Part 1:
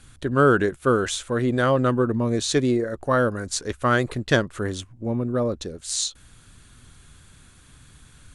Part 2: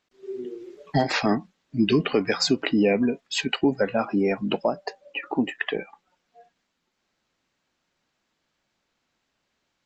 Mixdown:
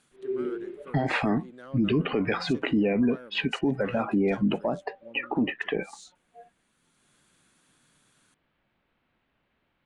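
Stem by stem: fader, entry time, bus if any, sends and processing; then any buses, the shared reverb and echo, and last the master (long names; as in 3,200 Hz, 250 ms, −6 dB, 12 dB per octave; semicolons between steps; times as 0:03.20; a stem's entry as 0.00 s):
−11.5 dB, 0.00 s, no send, high-pass filter 170 Hz 24 dB per octave; soft clipping −11.5 dBFS, distortion −15 dB; automatic ducking −12 dB, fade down 0.30 s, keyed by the second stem
+2.0 dB, 0.00 s, no send, low-pass filter 3,100 Hz 24 dB per octave; low-shelf EQ 210 Hz +6.5 dB; brickwall limiter −18.5 dBFS, peak gain reduction 10 dB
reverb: not used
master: no processing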